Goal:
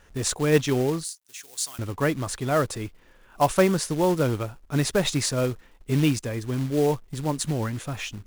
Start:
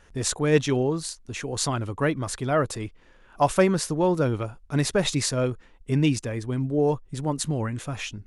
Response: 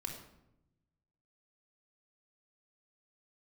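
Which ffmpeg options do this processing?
-filter_complex "[0:a]acrusher=bits=4:mode=log:mix=0:aa=0.000001,asettb=1/sr,asplit=3[link_01][link_02][link_03];[link_01]atrim=end=1.044[link_04];[link_02]atrim=start=1.04:end=1.79,asetpts=PTS-STARTPTS,afade=type=in:duration=0.004:curve=qsin,afade=type=out:start_time=0.746:duration=0.004:curve=qsin,aderivative[link_05];[link_03]atrim=start=1.786[link_06];[link_04][link_05]acrossfade=duration=0.004:curve1=hsin:curve2=qsin[link_07];[link_07][link_06]acrossfade=duration=0.004:curve1=qsin:curve2=hsin"

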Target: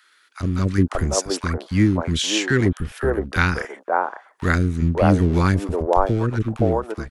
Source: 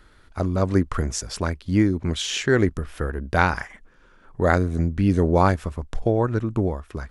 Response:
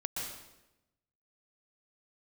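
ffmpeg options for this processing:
-filter_complex "[0:a]acrossover=split=530[link_01][link_02];[link_01]aeval=exprs='sgn(val(0))*max(abs(val(0))-0.0158,0)':channel_layout=same[link_03];[link_03][link_02]amix=inputs=2:normalize=0,acrossover=split=380|1200[link_04][link_05][link_06];[link_04]adelay=30[link_07];[link_05]adelay=550[link_08];[link_07][link_08][link_06]amix=inputs=3:normalize=0,volume=4.5dB"

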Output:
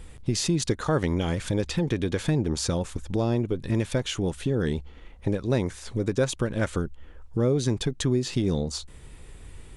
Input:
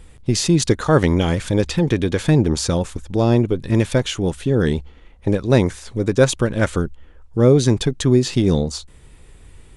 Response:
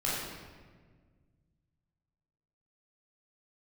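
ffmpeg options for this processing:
-af "acompressor=threshold=-28dB:ratio=2"

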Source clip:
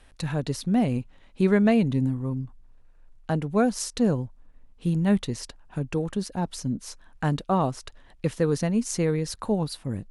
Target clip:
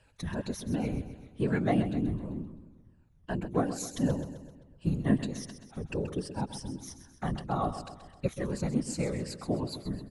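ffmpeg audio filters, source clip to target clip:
ffmpeg -i in.wav -af "afftfilt=real='re*pow(10,13/40*sin(2*PI*(1.3*log(max(b,1)*sr/1024/100)/log(2)-(-2.7)*(pts-256)/sr)))':imag='im*pow(10,13/40*sin(2*PI*(1.3*log(max(b,1)*sr/1024/100)/log(2)-(-2.7)*(pts-256)/sr)))':win_size=1024:overlap=0.75,afftfilt=real='hypot(re,im)*cos(2*PI*random(0))':imag='hypot(re,im)*sin(2*PI*random(1))':win_size=512:overlap=0.75,aecho=1:1:130|260|390|520|650:0.266|0.136|0.0692|0.0353|0.018,volume=-3dB" out.wav

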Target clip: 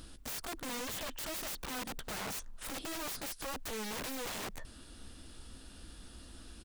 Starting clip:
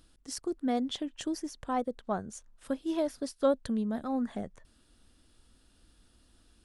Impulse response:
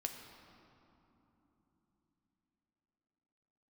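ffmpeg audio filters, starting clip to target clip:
-filter_complex "[0:a]aeval=exprs='(tanh(79.4*val(0)+0.2)-tanh(0.2))/79.4':channel_layout=same,asplit=2[link_01][link_02];[link_02]adelay=15,volume=-11.5dB[link_03];[link_01][link_03]amix=inputs=2:normalize=0,aeval=exprs='(mod(224*val(0)+1,2)-1)/224':channel_layout=same,volume=12dB"

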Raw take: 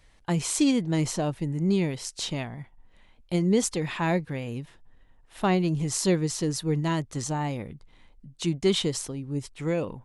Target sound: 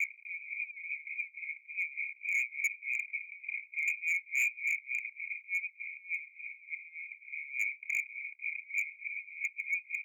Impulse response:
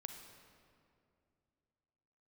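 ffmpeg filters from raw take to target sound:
-af "aeval=exprs='val(0)+0.5*0.0141*sgn(val(0))':channel_layout=same,areverse,acompressor=threshold=-36dB:ratio=16,areverse,apsyclip=35dB,asuperpass=centerf=2300:order=12:qfactor=6.9,aderivative,aecho=1:1:494|988|1482:0.501|0.115|0.0265,tremolo=f=3.4:d=0.91,volume=29.5dB,asoftclip=hard,volume=-29.5dB,volume=4dB"

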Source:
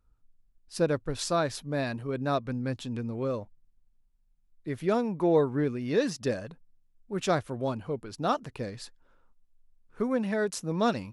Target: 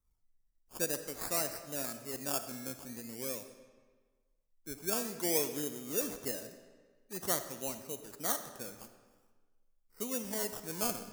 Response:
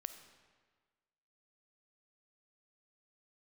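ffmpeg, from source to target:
-filter_complex "[0:a]acrossover=split=170[link_01][link_02];[link_01]acompressor=threshold=-55dB:ratio=6[link_03];[link_03][link_02]amix=inputs=2:normalize=0,acrusher=samples=18:mix=1:aa=0.000001:lfo=1:lforange=10.8:lforate=0.48,aexciter=amount=5.2:drive=3.7:freq=5000[link_04];[1:a]atrim=start_sample=2205[link_05];[link_04][link_05]afir=irnorm=-1:irlink=0,volume=-7dB"

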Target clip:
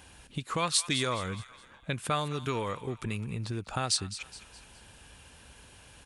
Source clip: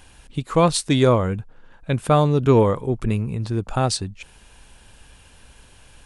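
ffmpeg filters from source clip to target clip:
ffmpeg -i in.wav -filter_complex "[0:a]highpass=58,acrossover=split=1300[link_01][link_02];[link_01]acompressor=threshold=-30dB:ratio=6[link_03];[link_02]aecho=1:1:209|418|627|836:0.224|0.0963|0.0414|0.0178[link_04];[link_03][link_04]amix=inputs=2:normalize=0,volume=-2.5dB" out.wav

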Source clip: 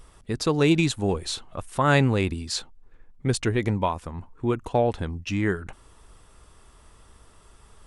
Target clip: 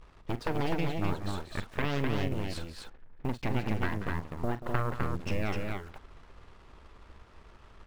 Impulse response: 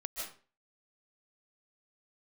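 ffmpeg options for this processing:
-filter_complex "[0:a]lowpass=2300,acompressor=threshold=-28dB:ratio=8,acrusher=bits=8:mix=0:aa=0.5,aeval=exprs='0.15*(cos(1*acos(clip(val(0)/0.15,-1,1)))-cos(1*PI/2))+0.0531*(cos(2*acos(clip(val(0)/0.15,-1,1)))-cos(2*PI/2))+0.075*(cos(3*acos(clip(val(0)/0.15,-1,1)))-cos(3*PI/2))+0.0168*(cos(6*acos(clip(val(0)/0.15,-1,1)))-cos(6*PI/2))':channel_layout=same,asplit=2[link_01][link_02];[link_02]aecho=0:1:42|184|254:0.224|0.251|0.668[link_03];[link_01][link_03]amix=inputs=2:normalize=0,volume=3dB"

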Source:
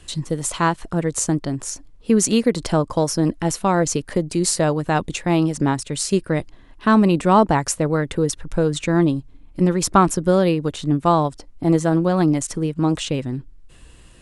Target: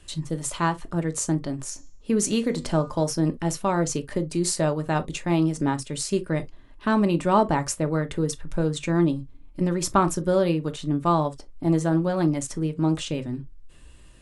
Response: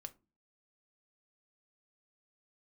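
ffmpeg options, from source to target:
-filter_complex "[0:a]asettb=1/sr,asplit=3[link_01][link_02][link_03];[link_01]atrim=end=1.704[link_04];[link_02]atrim=start=1.7:end=3.04,asetpts=PTS-STARTPTS,afade=type=in:duration=0.004:curve=qsin,afade=type=out:start_time=1.336:duration=0.004:curve=qsin,bandreject=frequency=242.8:width_type=h:width=4,bandreject=frequency=485.6:width_type=h:width=4,bandreject=frequency=728.4:width_type=h:width=4,bandreject=frequency=971.2:width_type=h:width=4,bandreject=frequency=1214:width_type=h:width=4,bandreject=frequency=1456.8:width_type=h:width=4,bandreject=frequency=1699.6:width_type=h:width=4,bandreject=frequency=1942.4:width_type=h:width=4,bandreject=frequency=2185.2:width_type=h:width=4,bandreject=frequency=2428:width_type=h:width=4,bandreject=frequency=2670.8:width_type=h:width=4,bandreject=frequency=2913.6:width_type=h:width=4,bandreject=frequency=3156.4:width_type=h:width=4,bandreject=frequency=3399.2:width_type=h:width=4,bandreject=frequency=3642:width_type=h:width=4,bandreject=frequency=3884.8:width_type=h:width=4,bandreject=frequency=4127.6:width_type=h:width=4,bandreject=frequency=4370.4:width_type=h:width=4,bandreject=frequency=4613.2:width_type=h:width=4,bandreject=frequency=4856:width_type=h:width=4,bandreject=frequency=5098.8:width_type=h:width=4,bandreject=frequency=5341.6:width_type=h:width=4,bandreject=frequency=5584.4:width_type=h:width=4,bandreject=frequency=5827.2:width_type=h:width=4,bandreject=frequency=6070:width_type=h:width=4,bandreject=frequency=6312.8:width_type=h:width=4,bandreject=frequency=6555.6:width_type=h:width=4,bandreject=frequency=6798.4:width_type=h:width=4,bandreject=frequency=7041.2:width_type=h:width=4,bandreject=frequency=7284:width_type=h:width=4,bandreject=frequency=7526.8:width_type=h:width=4,bandreject=frequency=7769.6:width_type=h:width=4,bandreject=frequency=8012.4:width_type=h:width=4[link_05];[link_03]atrim=start=3.036[link_06];[link_04][link_05]acrossfade=duration=0.004:curve1=hsin:curve2=qsin[link_07];[link_07][link_06]acrossfade=duration=0.004:curve1=qsin:curve2=hsin[link_08];[1:a]atrim=start_sample=2205,atrim=end_sample=3087[link_09];[link_08][link_09]afir=irnorm=-1:irlink=0"

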